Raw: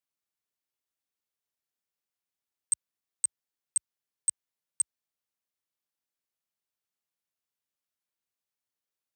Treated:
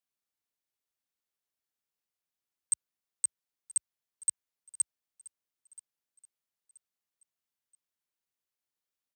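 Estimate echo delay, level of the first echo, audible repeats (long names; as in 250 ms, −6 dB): 978 ms, −21.0 dB, 2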